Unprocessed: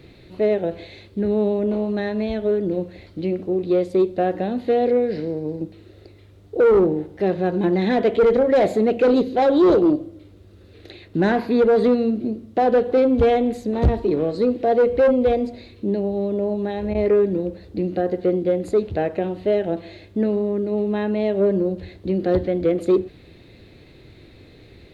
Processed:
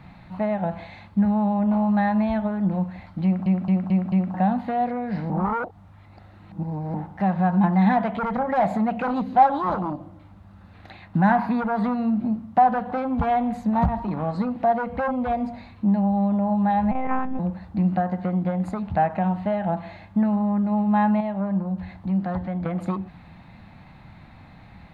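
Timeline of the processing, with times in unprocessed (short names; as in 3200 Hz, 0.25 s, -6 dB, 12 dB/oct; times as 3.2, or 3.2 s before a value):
3.24 stutter in place 0.22 s, 5 plays
5.3–6.94 reverse
16.91–17.39 monotone LPC vocoder at 8 kHz 260 Hz
21.2–22.66 compressor 1.5:1, threshold -36 dBFS
whole clip: compressor, threshold -19 dBFS; EQ curve 120 Hz 0 dB, 190 Hz +9 dB, 410 Hz -19 dB, 830 Hz +14 dB, 3800 Hz -8 dB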